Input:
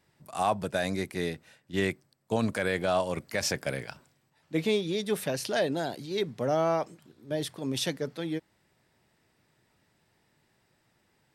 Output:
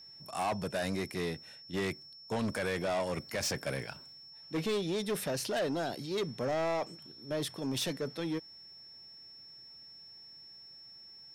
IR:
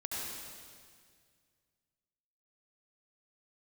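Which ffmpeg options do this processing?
-af "aeval=exprs='val(0)+0.00316*sin(2*PI*5400*n/s)':c=same,asoftclip=type=tanh:threshold=-28dB"

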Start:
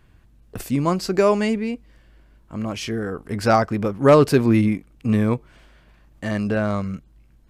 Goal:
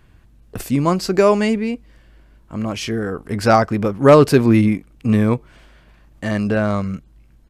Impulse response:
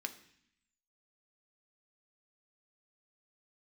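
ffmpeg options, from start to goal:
-af "aresample=32000,aresample=44100,volume=3.5dB"

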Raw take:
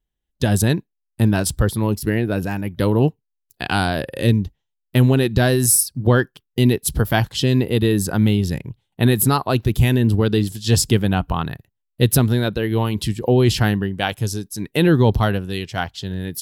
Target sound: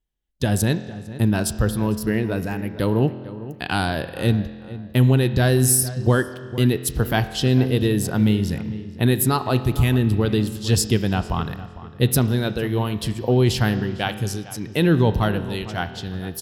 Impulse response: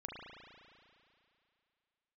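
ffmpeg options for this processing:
-filter_complex "[0:a]asplit=2[a][b];[b]adelay=453,lowpass=f=2k:p=1,volume=-15dB,asplit=2[c][d];[d]adelay=453,lowpass=f=2k:p=1,volume=0.33,asplit=2[e][f];[f]adelay=453,lowpass=f=2k:p=1,volume=0.33[g];[a][c][e][g]amix=inputs=4:normalize=0,asplit=2[h][i];[1:a]atrim=start_sample=2205,asetrate=66150,aresample=44100[j];[i][j]afir=irnorm=-1:irlink=0,volume=-4dB[k];[h][k]amix=inputs=2:normalize=0,volume=-4.5dB"

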